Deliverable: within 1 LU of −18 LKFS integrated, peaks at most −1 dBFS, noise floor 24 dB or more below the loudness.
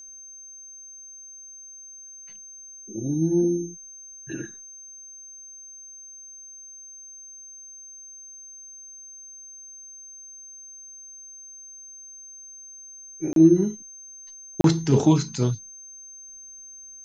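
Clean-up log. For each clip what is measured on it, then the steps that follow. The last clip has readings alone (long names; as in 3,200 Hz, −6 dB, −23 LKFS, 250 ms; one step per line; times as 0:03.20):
number of dropouts 2; longest dropout 32 ms; interfering tone 6,300 Hz; level of the tone −41 dBFS; integrated loudness −23.0 LKFS; sample peak −5.0 dBFS; target loudness −18.0 LKFS
→ repair the gap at 0:13.33/0:14.61, 32 ms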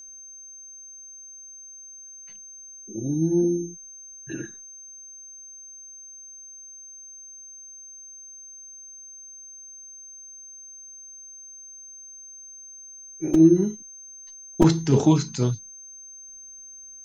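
number of dropouts 0; interfering tone 6,300 Hz; level of the tone −41 dBFS
→ notch filter 6,300 Hz, Q 30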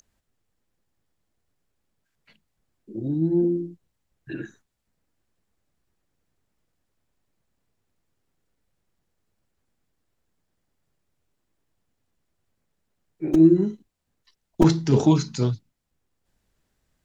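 interfering tone none found; integrated loudness −21.5 LKFS; sample peak −3.5 dBFS; target loudness −18.0 LKFS
→ level +3.5 dB
brickwall limiter −1 dBFS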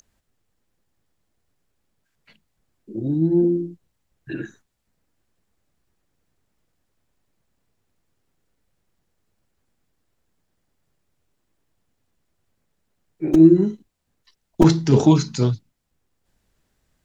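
integrated loudness −18.0 LKFS; sample peak −1.0 dBFS; background noise floor −73 dBFS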